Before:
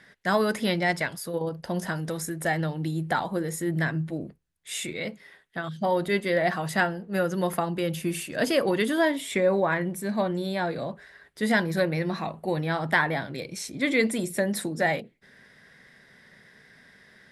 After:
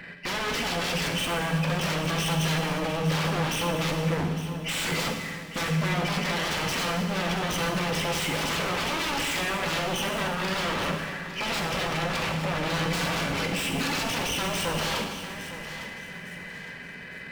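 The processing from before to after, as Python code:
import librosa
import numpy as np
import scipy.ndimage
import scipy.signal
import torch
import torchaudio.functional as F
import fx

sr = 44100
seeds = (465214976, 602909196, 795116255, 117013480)

p1 = fx.freq_compress(x, sr, knee_hz=2000.0, ratio=4.0)
p2 = fx.over_compress(p1, sr, threshold_db=-30.0, ratio=-0.5)
p3 = p1 + (p2 * librosa.db_to_amplitude(3.0))
p4 = 10.0 ** (-25.5 / 20.0) * (np.abs((p3 / 10.0 ** (-25.5 / 20.0) + 3.0) % 4.0 - 2.0) - 1.0)
p5 = p4 + fx.echo_feedback(p4, sr, ms=857, feedback_pct=35, wet_db=-12.5, dry=0)
p6 = fx.rev_fdn(p5, sr, rt60_s=1.8, lf_ratio=1.35, hf_ratio=1.0, size_ms=35.0, drr_db=2.0)
y = fx.running_max(p6, sr, window=3)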